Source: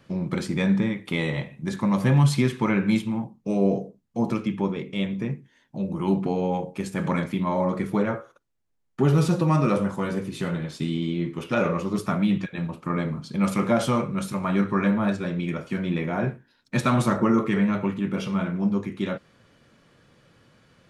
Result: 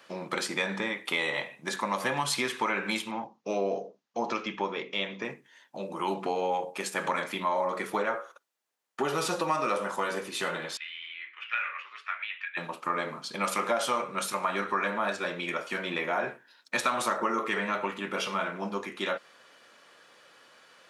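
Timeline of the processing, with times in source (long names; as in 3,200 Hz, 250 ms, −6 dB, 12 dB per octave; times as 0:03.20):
0:03.11–0:05.25: Butterworth low-pass 6,600 Hz 48 dB per octave
0:10.77–0:12.57: flat-topped band-pass 2,100 Hz, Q 1.7
whole clip: high-pass filter 650 Hz 12 dB per octave; notch filter 2,200 Hz, Q 30; downward compressor 3 to 1, threshold −32 dBFS; level +6 dB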